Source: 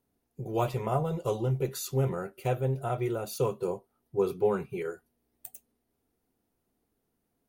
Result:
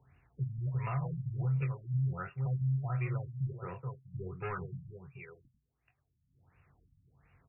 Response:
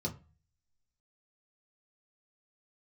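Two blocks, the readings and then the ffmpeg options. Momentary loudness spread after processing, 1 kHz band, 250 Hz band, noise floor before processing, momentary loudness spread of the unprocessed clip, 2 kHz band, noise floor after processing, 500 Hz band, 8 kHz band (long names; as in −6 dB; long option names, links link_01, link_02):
14 LU, −9.5 dB, −7.0 dB, −79 dBFS, 14 LU, −2.0 dB, −80 dBFS, −18.0 dB, below −35 dB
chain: -filter_complex "[0:a]highpass=57,aecho=1:1:430:0.316,acrossover=split=250|1500|4000[link_01][link_02][link_03][link_04];[link_02]asoftclip=type=tanh:threshold=-26dB[link_05];[link_01][link_05][link_03][link_04]amix=inputs=4:normalize=0,firequalizer=gain_entry='entry(140,0);entry(210,-24);entry(610,-21);entry(1200,-8);entry(3100,3)':delay=0.05:min_phase=1,acompressor=mode=upward:threshold=-50dB:ratio=2.5,asplit=2[link_06][link_07];[link_07]highpass=frequency=720:poles=1,volume=9dB,asoftclip=type=tanh:threshold=-14.5dB[link_08];[link_06][link_08]amix=inputs=2:normalize=0,lowpass=frequency=1100:poles=1,volume=-6dB,asplit=2[link_09][link_10];[link_10]adelay=22,volume=-7dB[link_11];[link_09][link_11]amix=inputs=2:normalize=0,alimiter=level_in=10dB:limit=-24dB:level=0:latency=1:release=90,volume=-10dB,equalizer=frequency=1400:width=8:gain=-3,afftfilt=real='re*lt(b*sr/1024,250*pow(2900/250,0.5+0.5*sin(2*PI*1.4*pts/sr)))':imag='im*lt(b*sr/1024,250*pow(2900/250,0.5+0.5*sin(2*PI*1.4*pts/sr)))':win_size=1024:overlap=0.75,volume=8.5dB"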